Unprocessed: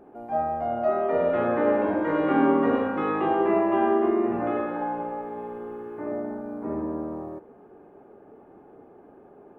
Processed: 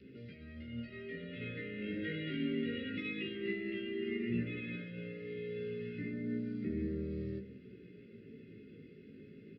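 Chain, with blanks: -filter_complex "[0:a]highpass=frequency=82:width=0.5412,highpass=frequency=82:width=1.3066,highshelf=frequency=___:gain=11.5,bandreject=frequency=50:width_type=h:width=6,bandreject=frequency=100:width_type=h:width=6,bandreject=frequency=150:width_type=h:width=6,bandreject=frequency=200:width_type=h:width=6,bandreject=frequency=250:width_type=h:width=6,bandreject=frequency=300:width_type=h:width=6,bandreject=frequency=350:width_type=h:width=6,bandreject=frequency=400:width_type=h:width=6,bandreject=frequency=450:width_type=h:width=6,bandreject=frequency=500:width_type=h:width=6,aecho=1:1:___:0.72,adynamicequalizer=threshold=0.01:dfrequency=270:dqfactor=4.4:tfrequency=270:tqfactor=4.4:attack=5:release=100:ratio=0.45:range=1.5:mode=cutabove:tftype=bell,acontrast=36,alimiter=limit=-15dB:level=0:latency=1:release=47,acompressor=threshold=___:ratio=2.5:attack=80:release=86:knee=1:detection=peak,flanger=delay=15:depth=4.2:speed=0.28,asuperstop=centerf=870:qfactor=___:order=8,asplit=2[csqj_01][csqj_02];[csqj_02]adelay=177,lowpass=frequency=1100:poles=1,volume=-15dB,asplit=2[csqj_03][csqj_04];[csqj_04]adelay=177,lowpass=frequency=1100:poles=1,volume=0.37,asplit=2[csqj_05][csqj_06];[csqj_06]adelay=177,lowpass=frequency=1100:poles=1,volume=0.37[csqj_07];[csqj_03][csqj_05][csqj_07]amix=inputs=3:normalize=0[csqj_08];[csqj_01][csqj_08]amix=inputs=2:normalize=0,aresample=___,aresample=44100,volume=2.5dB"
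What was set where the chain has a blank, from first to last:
2400, 1.5, -34dB, 0.52, 11025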